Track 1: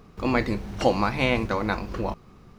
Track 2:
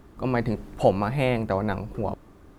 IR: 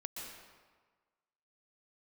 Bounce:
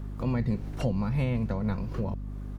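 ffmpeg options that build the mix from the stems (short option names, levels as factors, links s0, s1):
-filter_complex "[0:a]highpass=240,volume=0.708[s0];[1:a]adelay=1,volume=1.06,asplit=2[s1][s2];[s2]apad=whole_len=114127[s3];[s0][s3]sidechaingate=range=0.0224:threshold=0.0126:ratio=16:detection=peak[s4];[s4][s1]amix=inputs=2:normalize=0,acrossover=split=230[s5][s6];[s6]acompressor=threshold=0.0126:ratio=4[s7];[s5][s7]amix=inputs=2:normalize=0,aeval=exprs='val(0)+0.0178*(sin(2*PI*50*n/s)+sin(2*PI*2*50*n/s)/2+sin(2*PI*3*50*n/s)/3+sin(2*PI*4*50*n/s)/4+sin(2*PI*5*50*n/s)/5)':c=same"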